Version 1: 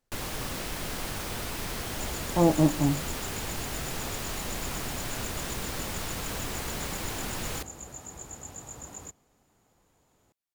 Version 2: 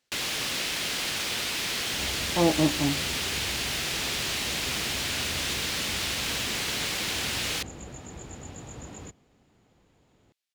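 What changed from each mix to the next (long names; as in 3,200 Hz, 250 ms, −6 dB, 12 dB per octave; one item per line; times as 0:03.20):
second sound: add spectral tilt −4 dB per octave
master: add meter weighting curve D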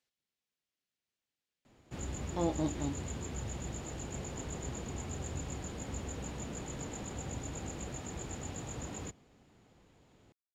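speech −10.0 dB
first sound: muted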